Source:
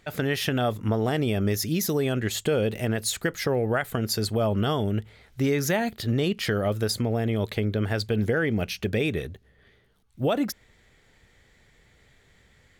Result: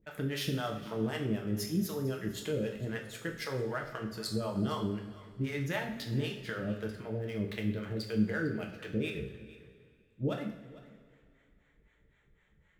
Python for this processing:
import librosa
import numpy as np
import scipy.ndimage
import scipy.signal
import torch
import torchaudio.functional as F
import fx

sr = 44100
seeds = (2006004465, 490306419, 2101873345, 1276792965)

y = fx.wiener(x, sr, points=9)
y = fx.peak_eq(y, sr, hz=720.0, db=-6.5, octaves=0.51)
y = fx.harmonic_tremolo(y, sr, hz=3.9, depth_pct=100, crossover_hz=520.0)
y = fx.high_shelf(y, sr, hz=9100.0, db=7.5, at=(7.07, 8.14))
y = y + 10.0 ** (-19.5 / 20.0) * np.pad(y, (int(453 * sr / 1000.0), 0))[:len(y)]
y = fx.rev_double_slope(y, sr, seeds[0], early_s=0.54, late_s=2.5, knee_db=-16, drr_db=1.0)
y = F.gain(torch.from_numpy(y), -6.0).numpy()